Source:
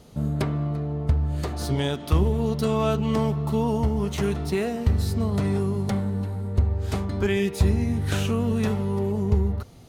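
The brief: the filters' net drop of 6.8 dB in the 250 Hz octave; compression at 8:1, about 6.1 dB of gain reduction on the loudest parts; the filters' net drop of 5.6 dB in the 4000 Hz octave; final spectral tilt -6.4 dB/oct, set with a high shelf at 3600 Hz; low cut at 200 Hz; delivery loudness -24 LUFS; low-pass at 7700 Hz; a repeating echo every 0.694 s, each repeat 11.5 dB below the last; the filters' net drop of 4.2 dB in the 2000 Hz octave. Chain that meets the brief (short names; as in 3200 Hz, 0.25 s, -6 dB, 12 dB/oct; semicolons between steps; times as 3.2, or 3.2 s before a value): HPF 200 Hz; LPF 7700 Hz; bell 250 Hz -5.5 dB; bell 2000 Hz -4 dB; high shelf 3600 Hz +3.5 dB; bell 4000 Hz -8 dB; compressor 8:1, threshold -29 dBFS; feedback echo 0.694 s, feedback 27%, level -11.5 dB; gain +10 dB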